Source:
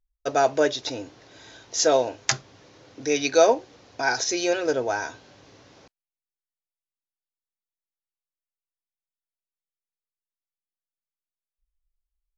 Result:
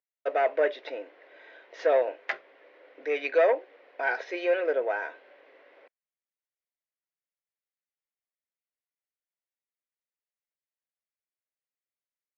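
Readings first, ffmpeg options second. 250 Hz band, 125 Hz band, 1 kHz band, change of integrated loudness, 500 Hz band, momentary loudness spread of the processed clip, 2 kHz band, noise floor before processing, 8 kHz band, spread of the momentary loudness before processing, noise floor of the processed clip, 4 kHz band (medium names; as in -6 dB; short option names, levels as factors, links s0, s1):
-12.0 dB, under -35 dB, -6.0 dB, -4.0 dB, -3.0 dB, 15 LU, -2.5 dB, under -85 dBFS, no reading, 13 LU, under -85 dBFS, -16.5 dB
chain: -af "aeval=exprs='(tanh(5.62*val(0)+0.2)-tanh(0.2))/5.62':c=same,highpass=f=410:w=0.5412,highpass=f=410:w=1.3066,equalizer=f=550:t=q:w=4:g=5,equalizer=f=840:t=q:w=4:g=-5,equalizer=f=1200:t=q:w=4:g=-4,equalizer=f=2000:t=q:w=4:g=6,lowpass=f=2600:w=0.5412,lowpass=f=2600:w=1.3066,volume=0.841"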